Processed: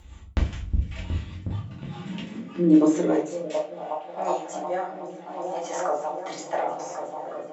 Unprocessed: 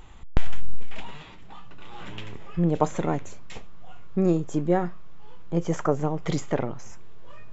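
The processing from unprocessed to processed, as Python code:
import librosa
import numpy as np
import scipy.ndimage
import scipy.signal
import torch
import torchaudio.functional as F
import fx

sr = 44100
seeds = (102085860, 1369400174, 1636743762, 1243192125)

y = fx.high_shelf(x, sr, hz=3300.0, db=9.5)
y = fx.echo_opening(y, sr, ms=365, hz=200, octaves=1, feedback_pct=70, wet_db=0)
y = fx.filter_sweep_highpass(y, sr, from_hz=60.0, to_hz=760.0, start_s=0.83, end_s=3.8, q=5.1)
y = fx.rotary_switch(y, sr, hz=5.0, then_hz=0.75, switch_at_s=3.4)
y = fx.room_shoebox(y, sr, seeds[0], volume_m3=240.0, walls='furnished', distance_m=2.4)
y = y * 10.0 ** (-5.5 / 20.0)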